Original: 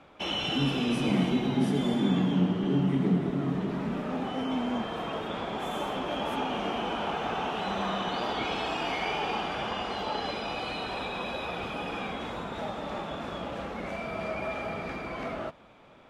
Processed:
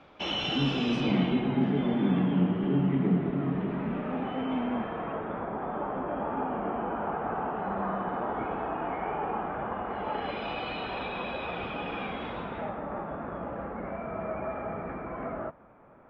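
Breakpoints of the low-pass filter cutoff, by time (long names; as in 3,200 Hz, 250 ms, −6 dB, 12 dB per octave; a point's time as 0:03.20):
low-pass filter 24 dB per octave
0:00.90 6,000 Hz
0:01.49 2,700 Hz
0:04.58 2,700 Hz
0:05.53 1,600 Hz
0:09.81 1,600 Hz
0:10.47 3,400 Hz
0:12.41 3,400 Hz
0:12.88 1,700 Hz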